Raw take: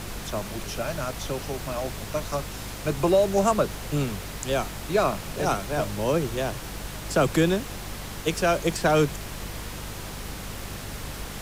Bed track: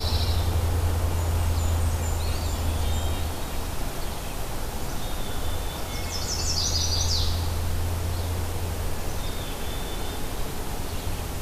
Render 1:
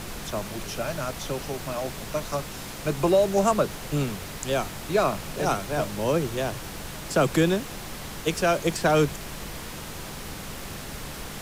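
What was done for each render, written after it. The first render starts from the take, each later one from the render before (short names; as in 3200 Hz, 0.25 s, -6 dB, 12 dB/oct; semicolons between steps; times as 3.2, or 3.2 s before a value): de-hum 50 Hz, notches 2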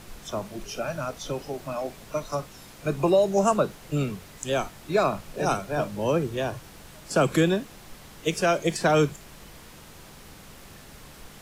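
noise print and reduce 10 dB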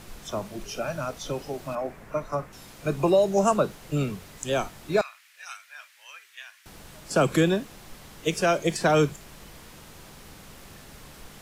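1.75–2.53 resonant high shelf 2600 Hz -9 dB, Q 1.5; 5.01–6.66 ladder high-pass 1600 Hz, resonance 45%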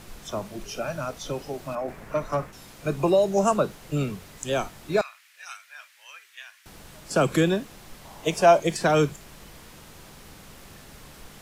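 1.88–2.51 sample leveller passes 1; 8.05–8.6 band shelf 790 Hz +9.5 dB 1 oct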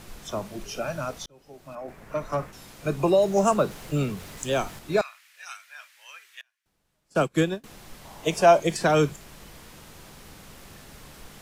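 1.26–2.51 fade in; 3.22–4.79 G.711 law mismatch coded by mu; 6.41–7.64 upward expander 2.5:1, over -36 dBFS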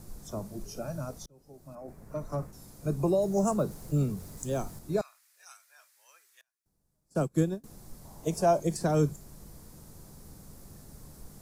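EQ curve 150 Hz 0 dB, 970 Hz -10 dB, 3000 Hz -21 dB, 4600 Hz -9 dB, 10000 Hz -2 dB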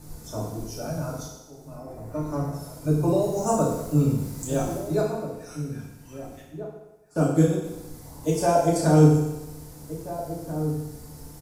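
outdoor echo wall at 280 m, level -11 dB; FDN reverb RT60 1 s, low-frequency decay 0.85×, high-frequency decay 1×, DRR -5.5 dB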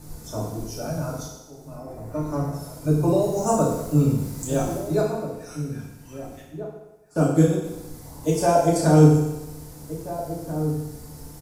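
gain +2 dB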